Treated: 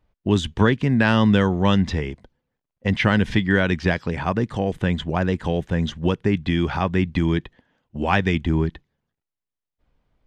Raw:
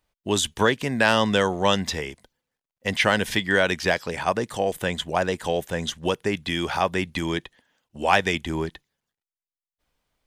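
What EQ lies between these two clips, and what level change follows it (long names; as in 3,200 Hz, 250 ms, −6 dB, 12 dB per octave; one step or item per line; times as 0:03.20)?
low-shelf EQ 340 Hz +8.5 dB
dynamic equaliser 600 Hz, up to −8 dB, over −33 dBFS, Q 0.98
head-to-tape spacing loss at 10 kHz 23 dB
+4.0 dB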